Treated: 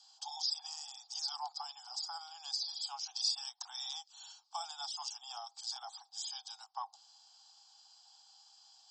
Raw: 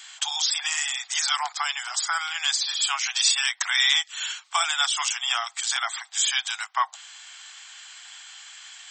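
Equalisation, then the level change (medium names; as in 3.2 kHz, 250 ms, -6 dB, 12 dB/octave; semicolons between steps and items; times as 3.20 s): two resonant band-passes 2 kHz, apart 2.6 oct; -5.5 dB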